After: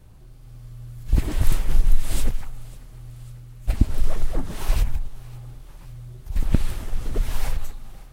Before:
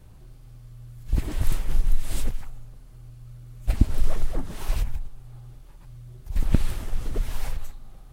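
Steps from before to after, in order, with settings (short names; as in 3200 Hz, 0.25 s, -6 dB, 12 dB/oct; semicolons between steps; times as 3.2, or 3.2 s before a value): AGC gain up to 5 dB; on a send: thinning echo 0.547 s, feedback 67%, level -20.5 dB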